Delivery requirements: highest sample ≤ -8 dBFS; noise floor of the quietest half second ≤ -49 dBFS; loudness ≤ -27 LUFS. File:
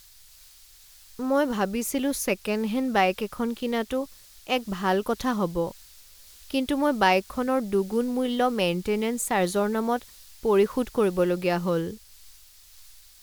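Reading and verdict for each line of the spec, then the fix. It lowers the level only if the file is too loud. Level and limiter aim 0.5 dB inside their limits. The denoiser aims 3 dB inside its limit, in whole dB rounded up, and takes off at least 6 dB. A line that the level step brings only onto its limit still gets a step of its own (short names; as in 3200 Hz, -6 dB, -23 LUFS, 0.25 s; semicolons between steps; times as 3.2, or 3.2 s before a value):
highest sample -7.5 dBFS: fail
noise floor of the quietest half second -52 dBFS: OK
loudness -26.0 LUFS: fail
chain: gain -1.5 dB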